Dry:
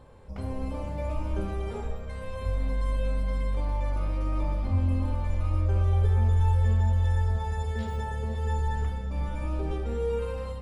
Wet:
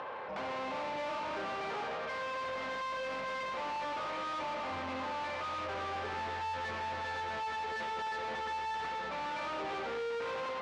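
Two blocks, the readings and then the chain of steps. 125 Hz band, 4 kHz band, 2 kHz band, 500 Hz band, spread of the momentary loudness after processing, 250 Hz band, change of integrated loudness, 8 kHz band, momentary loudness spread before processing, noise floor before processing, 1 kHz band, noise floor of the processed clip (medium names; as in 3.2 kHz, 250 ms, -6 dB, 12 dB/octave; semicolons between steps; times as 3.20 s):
-29.0 dB, +6.5 dB, +6.0 dB, -3.5 dB, 1 LU, -11.0 dB, -8.5 dB, no reading, 11 LU, -36 dBFS, +4.0 dB, -39 dBFS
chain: three-band isolator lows -13 dB, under 600 Hz, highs -22 dB, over 2.8 kHz; upward compressor, threshold -58 dBFS; overdrive pedal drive 36 dB, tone 4.1 kHz, clips at -25.5 dBFS; band-pass 140–5200 Hz; trim -5.5 dB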